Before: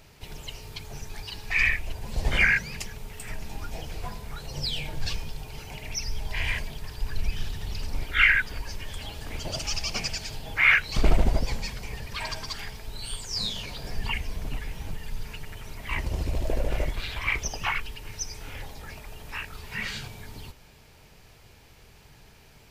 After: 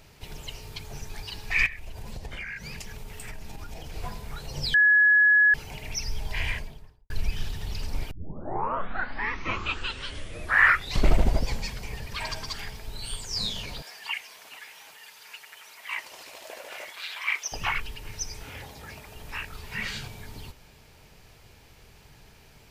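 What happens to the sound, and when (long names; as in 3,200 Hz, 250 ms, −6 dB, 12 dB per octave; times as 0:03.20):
0:01.66–0:03.96: downward compressor 12 to 1, threshold −33 dBFS
0:04.74–0:05.54: beep over 1,690 Hz −15 dBFS
0:06.36–0:07.10: fade out and dull
0:08.11: tape start 3.08 s
0:13.82–0:17.52: high-pass filter 1,000 Hz
0:18.43–0:19.16: high-pass filter 70 Hz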